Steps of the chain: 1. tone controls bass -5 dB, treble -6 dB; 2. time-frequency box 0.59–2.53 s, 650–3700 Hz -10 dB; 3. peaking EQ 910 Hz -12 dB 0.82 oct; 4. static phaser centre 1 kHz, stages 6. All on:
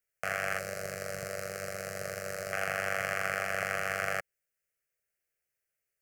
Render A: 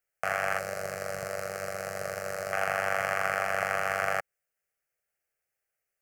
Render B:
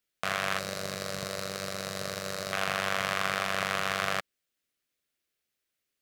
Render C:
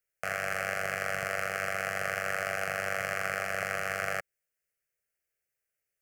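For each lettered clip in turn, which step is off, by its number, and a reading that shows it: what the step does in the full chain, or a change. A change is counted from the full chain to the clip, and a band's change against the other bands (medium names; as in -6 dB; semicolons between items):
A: 3, 1 kHz band +6.0 dB; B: 4, 4 kHz band +8.0 dB; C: 2, momentary loudness spread change -5 LU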